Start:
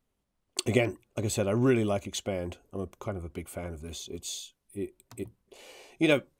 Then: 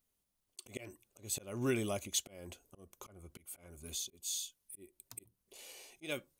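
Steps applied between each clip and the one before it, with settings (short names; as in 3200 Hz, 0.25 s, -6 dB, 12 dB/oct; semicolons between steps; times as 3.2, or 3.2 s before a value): auto swell 0.302 s; pre-emphasis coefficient 0.8; notch 7600 Hz, Q 18; gain +4.5 dB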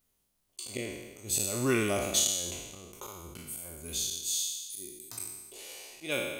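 spectral trails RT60 1.24 s; gain +4.5 dB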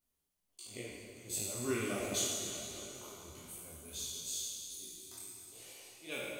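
plate-style reverb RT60 4 s, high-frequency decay 0.8×, DRR 2 dB; detuned doubles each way 49 cents; gain -6 dB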